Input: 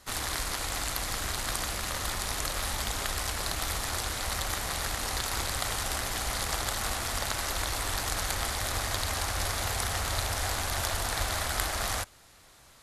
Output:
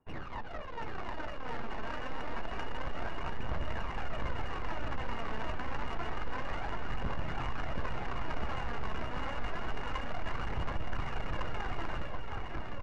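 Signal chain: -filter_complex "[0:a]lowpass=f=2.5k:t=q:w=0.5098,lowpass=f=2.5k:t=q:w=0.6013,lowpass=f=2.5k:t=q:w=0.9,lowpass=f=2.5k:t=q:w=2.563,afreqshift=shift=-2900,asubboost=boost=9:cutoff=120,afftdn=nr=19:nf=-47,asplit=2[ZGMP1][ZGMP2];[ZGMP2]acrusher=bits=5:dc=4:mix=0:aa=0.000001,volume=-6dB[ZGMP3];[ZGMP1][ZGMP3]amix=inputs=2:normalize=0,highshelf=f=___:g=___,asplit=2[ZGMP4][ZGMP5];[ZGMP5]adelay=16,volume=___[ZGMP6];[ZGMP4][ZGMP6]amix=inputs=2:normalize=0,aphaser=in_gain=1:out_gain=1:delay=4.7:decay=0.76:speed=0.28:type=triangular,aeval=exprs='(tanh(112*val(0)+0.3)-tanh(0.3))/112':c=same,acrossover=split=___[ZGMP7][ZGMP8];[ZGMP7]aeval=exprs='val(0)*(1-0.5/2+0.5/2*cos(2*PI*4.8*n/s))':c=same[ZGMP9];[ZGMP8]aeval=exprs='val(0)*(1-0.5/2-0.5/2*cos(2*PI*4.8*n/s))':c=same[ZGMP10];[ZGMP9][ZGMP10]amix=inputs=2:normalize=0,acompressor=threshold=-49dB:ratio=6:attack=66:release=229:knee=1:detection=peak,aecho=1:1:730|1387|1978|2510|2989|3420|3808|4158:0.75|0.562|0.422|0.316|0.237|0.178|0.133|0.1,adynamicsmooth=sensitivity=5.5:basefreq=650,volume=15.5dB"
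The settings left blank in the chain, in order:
2.2k, -8.5, -13dB, 2300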